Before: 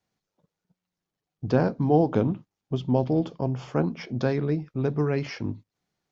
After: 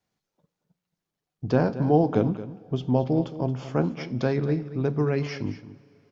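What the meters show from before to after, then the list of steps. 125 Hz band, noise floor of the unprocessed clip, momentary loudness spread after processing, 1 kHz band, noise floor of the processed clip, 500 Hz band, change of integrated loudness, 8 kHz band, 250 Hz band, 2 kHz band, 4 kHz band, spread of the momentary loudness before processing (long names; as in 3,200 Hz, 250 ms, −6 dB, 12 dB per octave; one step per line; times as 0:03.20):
+0.5 dB, below −85 dBFS, 11 LU, +0.5 dB, below −85 dBFS, +0.5 dB, +0.5 dB, can't be measured, +0.5 dB, +0.5 dB, +0.5 dB, 12 LU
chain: single-tap delay 225 ms −14 dB
coupled-rooms reverb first 0.54 s, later 4.8 s, from −18 dB, DRR 15 dB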